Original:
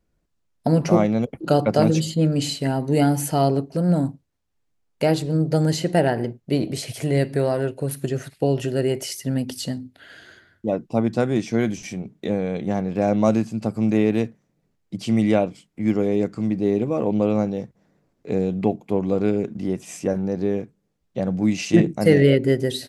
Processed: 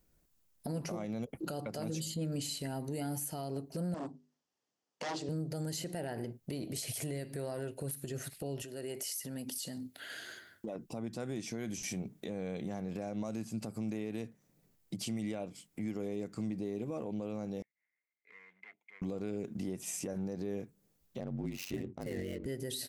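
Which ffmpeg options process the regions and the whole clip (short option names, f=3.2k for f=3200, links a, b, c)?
-filter_complex "[0:a]asettb=1/sr,asplit=3[a][b][c];[a]atrim=end=3.944[d];[b]atrim=start=3.94:end=5.29,asetpts=PTS-STARTPTS,afade=t=in:d=0.004:c=qsin,afade=t=out:st=1.346:d=0.004:c=qsin,bandreject=f=50:t=h:w=6,bandreject=f=100:t=h:w=6,bandreject=f=150:t=h:w=6,bandreject=f=200:t=h:w=6,bandreject=f=250:t=h:w=6,bandreject=f=300:t=h:w=6,bandreject=f=350:t=h:w=6,bandreject=f=400:t=h:w=6,bandreject=f=450:t=h:w=6,aeval=exprs='0.106*(abs(mod(val(0)/0.106+3,4)-2)-1)':c=same,highpass=260,equalizer=f=1.5k:t=q:w=4:g=-4,equalizer=f=2.3k:t=q:w=4:g=-6,equalizer=f=3.9k:t=q:w=4:g=-7,lowpass=f=5.9k:w=0.5412,lowpass=f=5.9k:w=1.3066[e];[c]atrim=start=5.286[f];[d][e]acrossfade=d=0.004:c1=hsin:c2=qsin[g];[g][f]acrossfade=d=0.004:c1=qsin:c2=hsin,asettb=1/sr,asplit=3[h][i][j];[h]atrim=end=8.624[k];[i]atrim=start=8.62:end=10.76,asetpts=PTS-STARTPTS,afade=t=in:d=0.004:c=qsin,afade=t=out:st=2.136:d=0.004:c=qsin,highpass=f=270:p=1,acompressor=threshold=-35dB:ratio=5:attack=3.2:release=140:knee=1:detection=peak[l];[j]atrim=start=10.756[m];[k][l]acrossfade=d=0.004:c1=hsin:c2=qsin[n];[n][m]acrossfade=d=0.004:c1=qsin:c2=hsin,asettb=1/sr,asplit=3[o][p][q];[o]atrim=end=17.624[r];[p]atrim=start=17.62:end=19.02,asetpts=PTS-STARTPTS,afade=t=in:d=0.004:c=qsin,afade=t=out:st=1.396:d=0.004:c=qsin,volume=23dB,asoftclip=hard,volume=-23dB,bandpass=f=2.1k:t=q:w=18[s];[q]atrim=start=19.016[t];[r][s]acrossfade=d=0.004:c1=hsin:c2=qsin[u];[u][t]acrossfade=d=0.004:c1=qsin:c2=hsin,asettb=1/sr,asplit=3[v][w][x];[v]atrim=end=21.204[y];[w]atrim=start=21.2:end=22.46,asetpts=PTS-STARTPTS,afade=t=in:d=0.004:c=qsin,afade=t=out:st=1.256:d=0.004:c=qsin,aeval=exprs='val(0)*sin(2*PI*46*n/s)':c=same,adynamicsmooth=sensitivity=7:basefreq=1.6k[z];[x]atrim=start=22.456[aa];[y][z]acrossfade=d=0.004:c1=hsin:c2=qsin[ab];[ab][aa]acrossfade=d=0.004:c1=qsin:c2=hsin,aemphasis=mode=production:type=50fm,acompressor=threshold=-34dB:ratio=3,alimiter=level_in=3.5dB:limit=-24dB:level=0:latency=1:release=63,volume=-3.5dB,volume=-1.5dB"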